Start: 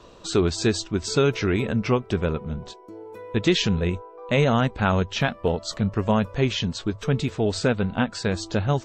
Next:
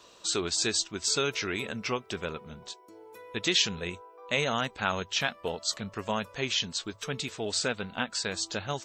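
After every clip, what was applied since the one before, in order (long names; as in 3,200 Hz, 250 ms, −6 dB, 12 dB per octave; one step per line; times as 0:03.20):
spectral tilt +3.5 dB per octave
level −6 dB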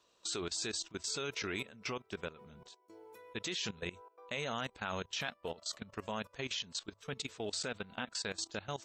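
output level in coarse steps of 17 dB
level −4 dB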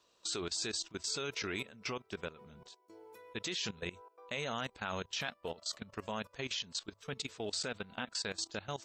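parametric band 4,800 Hz +2.5 dB 0.33 octaves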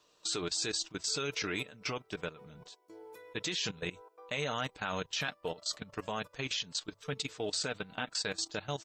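comb filter 6.6 ms, depth 40%
level +2.5 dB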